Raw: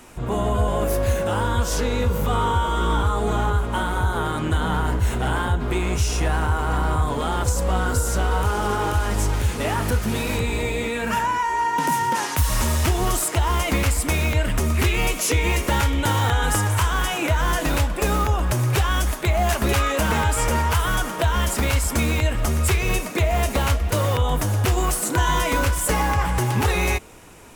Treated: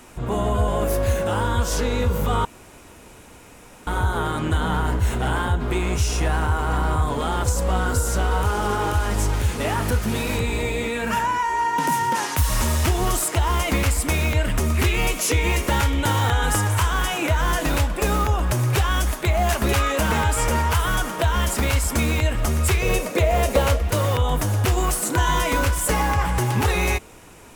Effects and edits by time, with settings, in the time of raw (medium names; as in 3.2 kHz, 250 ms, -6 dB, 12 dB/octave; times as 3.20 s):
2.45–3.87 s: room tone
22.82–23.82 s: peaking EQ 520 Hz +12 dB 0.39 oct